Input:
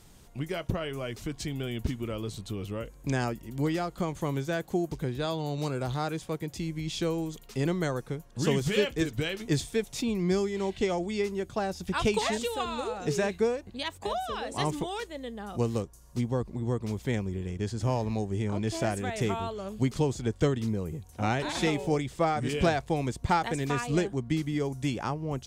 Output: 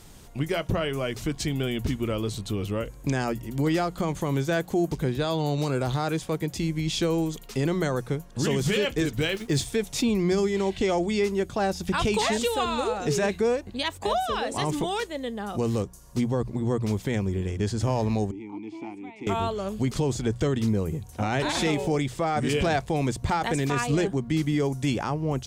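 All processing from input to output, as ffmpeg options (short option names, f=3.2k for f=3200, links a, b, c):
-filter_complex "[0:a]asettb=1/sr,asplit=3[a][b][c];[a]atrim=end=9.184[d];[b]atrim=start=9.18:end=9.66,asetpts=PTS-STARTPTS,afade=t=in:d=0.004:c=qsin,afade=t=out:st=0.476:d=0.004:c=qsin,agate=range=-33dB:threshold=-36dB:ratio=3:release=100:detection=peak,acrusher=bits=8:mix=0:aa=0.5[e];[c]atrim=start=9.656[f];[d][e]acrossfade=d=0.004:c1=hsin:c2=qsin[g];[g][f]acrossfade=d=0.004:c1=qsin:c2=hsin,asettb=1/sr,asplit=3[h][i][j];[h]atrim=end=18.314[k];[i]atrim=start=18.31:end=19.27,asetpts=PTS-STARTPTS,afade=t=in:d=0.004:c=qsin,afade=t=out:st=0.956:d=0.004:c=qsin,asplit=3[l][m][n];[l]bandpass=f=300:t=q:w=8,volume=0dB[o];[m]bandpass=f=870:t=q:w=8,volume=-6dB[p];[n]bandpass=f=2.24k:t=q:w=8,volume=-9dB[q];[o][p][q]amix=inputs=3:normalize=0,lowshelf=f=170:g=-6[r];[j]atrim=start=19.266[s];[k][r]acrossfade=d=0.004:c1=hsin:c2=qsin[t];[t][s]acrossfade=d=0.004:c1=qsin:c2=hsin,bandreject=f=60:t=h:w=6,bandreject=f=120:t=h:w=6,bandreject=f=180:t=h:w=6,alimiter=limit=-22.5dB:level=0:latency=1:release=21,volume=6.5dB"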